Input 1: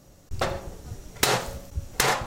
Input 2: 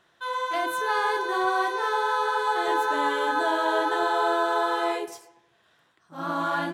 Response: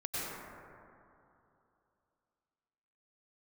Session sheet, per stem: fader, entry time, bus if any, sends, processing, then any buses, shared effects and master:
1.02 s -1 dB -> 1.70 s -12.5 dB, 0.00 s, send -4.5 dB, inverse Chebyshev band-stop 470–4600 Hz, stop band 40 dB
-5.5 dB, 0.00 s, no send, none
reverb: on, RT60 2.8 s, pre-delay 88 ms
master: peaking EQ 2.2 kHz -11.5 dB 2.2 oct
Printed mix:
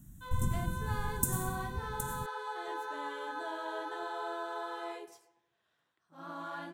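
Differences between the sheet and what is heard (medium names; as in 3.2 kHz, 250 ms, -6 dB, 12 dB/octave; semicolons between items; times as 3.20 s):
stem 2 -5.5 dB -> -15.0 dB; master: missing peaking EQ 2.2 kHz -11.5 dB 2.2 oct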